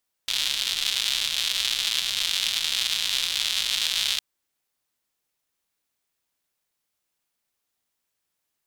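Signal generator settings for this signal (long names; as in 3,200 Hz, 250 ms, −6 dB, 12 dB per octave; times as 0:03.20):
rain-like ticks over hiss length 3.91 s, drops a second 220, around 3,500 Hz, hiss −25 dB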